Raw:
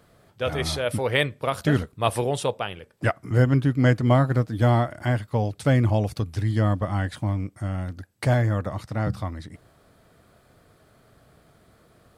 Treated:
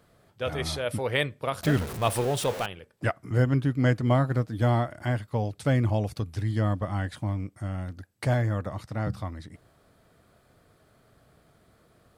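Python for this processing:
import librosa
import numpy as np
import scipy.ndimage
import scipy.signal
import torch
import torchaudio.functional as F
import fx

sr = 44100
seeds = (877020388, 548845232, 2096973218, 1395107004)

y = fx.zero_step(x, sr, step_db=-26.5, at=(1.63, 2.66))
y = F.gain(torch.from_numpy(y), -4.0).numpy()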